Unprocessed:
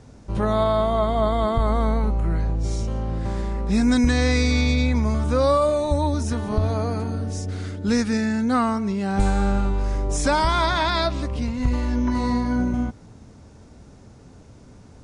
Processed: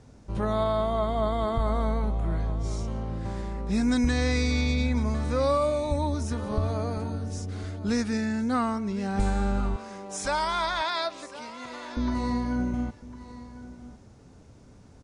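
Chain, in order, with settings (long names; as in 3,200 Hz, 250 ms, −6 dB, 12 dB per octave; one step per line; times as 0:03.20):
0:09.76–0:11.97: high-pass filter 520 Hz 12 dB per octave
single-tap delay 1,055 ms −16 dB
level −5.5 dB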